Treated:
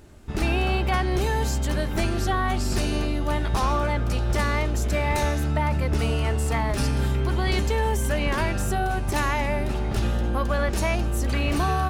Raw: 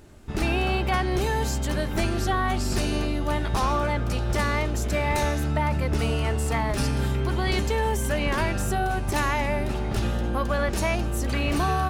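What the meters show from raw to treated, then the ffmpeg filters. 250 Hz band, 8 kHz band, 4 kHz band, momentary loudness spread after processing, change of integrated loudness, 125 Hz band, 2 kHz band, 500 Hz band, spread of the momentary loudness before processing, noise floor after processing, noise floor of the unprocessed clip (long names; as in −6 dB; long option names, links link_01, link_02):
0.0 dB, 0.0 dB, 0.0 dB, 2 LU, +1.0 dB, +1.5 dB, 0.0 dB, 0.0 dB, 3 LU, −26 dBFS, −27 dBFS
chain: -af "equalizer=frequency=60:width_type=o:width=0.77:gain=3"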